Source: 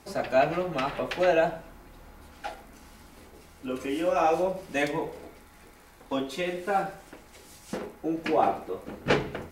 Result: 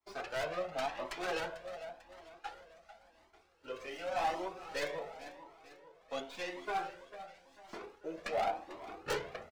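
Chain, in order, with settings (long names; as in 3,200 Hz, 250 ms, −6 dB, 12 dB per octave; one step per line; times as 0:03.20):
stylus tracing distortion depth 0.5 ms
downward expander −43 dBFS
three-way crossover with the lows and the highs turned down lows −12 dB, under 380 Hz, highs −15 dB, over 6,800 Hz
hard clipping −22.5 dBFS, distortion −10 dB
repeating echo 445 ms, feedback 48%, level −14 dB
flanger whose copies keep moving one way rising 0.91 Hz
level −3 dB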